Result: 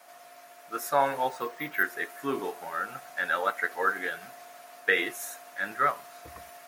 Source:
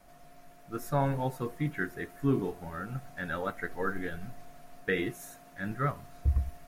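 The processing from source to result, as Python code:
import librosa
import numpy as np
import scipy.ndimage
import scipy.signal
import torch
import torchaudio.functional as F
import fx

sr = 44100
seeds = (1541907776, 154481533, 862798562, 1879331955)

y = scipy.signal.sosfilt(scipy.signal.butter(2, 660.0, 'highpass', fs=sr, output='sos'), x)
y = fx.resample_bad(y, sr, factor=3, down='filtered', up='hold', at=(1.29, 1.83))
y = F.gain(torch.from_numpy(y), 9.0).numpy()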